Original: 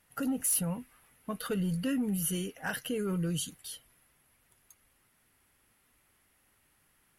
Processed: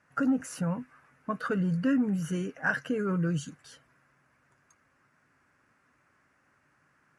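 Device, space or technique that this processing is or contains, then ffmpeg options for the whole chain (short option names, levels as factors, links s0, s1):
car door speaker: -af "highpass=81,equalizer=f=140:t=q:w=4:g=7,equalizer=f=230:t=q:w=4:g=-6,equalizer=f=590:t=q:w=4:g=5,equalizer=f=1100:t=q:w=4:g=5,equalizer=f=1900:t=q:w=4:g=-4,equalizer=f=3200:t=q:w=4:g=-8,lowpass=f=6900:w=0.5412,lowpass=f=6900:w=1.3066,equalizer=f=250:t=o:w=0.67:g=9,equalizer=f=1600:t=o:w=0.67:g=11,equalizer=f=4000:t=o:w=0.67:g=-7"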